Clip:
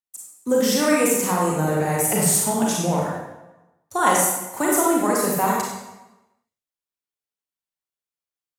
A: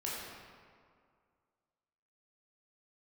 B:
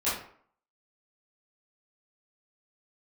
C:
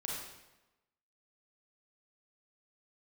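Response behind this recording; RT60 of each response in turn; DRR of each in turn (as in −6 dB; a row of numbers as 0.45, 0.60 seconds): C; 2.1, 0.55, 1.0 seconds; −6.5, −12.5, −3.5 decibels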